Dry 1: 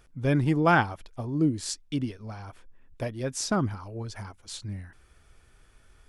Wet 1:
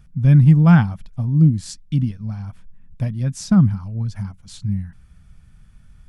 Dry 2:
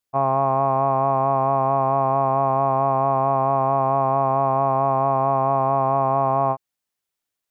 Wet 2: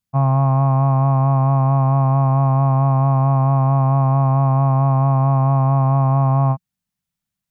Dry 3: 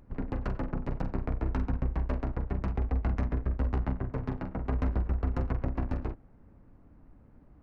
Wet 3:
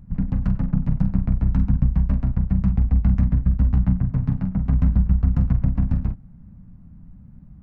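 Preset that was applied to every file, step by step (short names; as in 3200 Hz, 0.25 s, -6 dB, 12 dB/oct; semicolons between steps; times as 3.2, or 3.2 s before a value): resonant low shelf 260 Hz +12 dB, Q 3; gain -1.5 dB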